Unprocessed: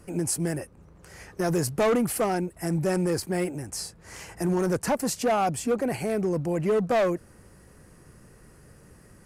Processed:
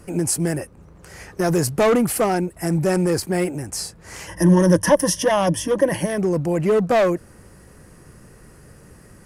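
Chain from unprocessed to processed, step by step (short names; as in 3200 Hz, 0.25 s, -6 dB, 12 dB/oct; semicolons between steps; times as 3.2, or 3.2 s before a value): 4.27–6.18 ripple EQ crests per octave 1.2, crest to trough 15 dB; gain +6 dB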